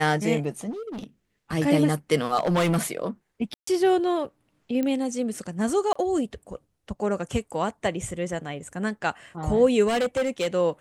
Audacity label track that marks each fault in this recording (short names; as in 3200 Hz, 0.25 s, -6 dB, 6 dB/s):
0.700000	1.040000	clipped -31.5 dBFS
2.370000	2.810000	clipped -18.5 dBFS
3.540000	3.670000	gap 0.134 s
4.830000	4.830000	pop -15 dBFS
5.930000	5.960000	gap 25 ms
9.870000	10.480000	clipped -20.5 dBFS